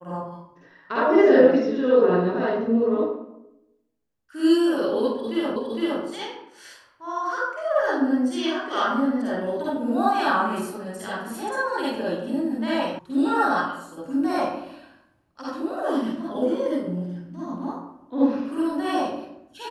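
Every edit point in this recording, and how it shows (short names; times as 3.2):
5.56 repeat of the last 0.46 s
12.99 sound cut off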